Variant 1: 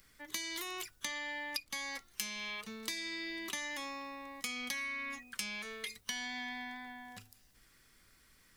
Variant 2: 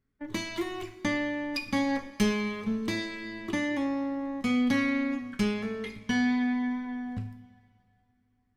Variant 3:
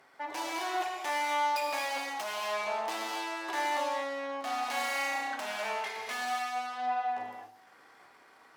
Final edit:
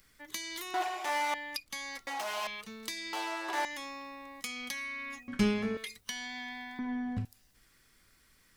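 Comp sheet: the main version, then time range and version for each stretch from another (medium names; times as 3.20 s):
1
0.74–1.34 s: from 3
2.07–2.47 s: from 3
3.13–3.65 s: from 3
5.28–5.77 s: from 2
6.79–7.25 s: from 2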